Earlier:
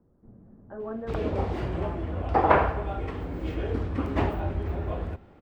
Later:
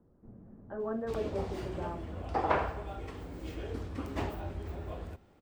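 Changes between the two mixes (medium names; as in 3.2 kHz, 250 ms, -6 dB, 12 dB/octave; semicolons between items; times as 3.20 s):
background -9.0 dB; master: add tone controls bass -1 dB, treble +14 dB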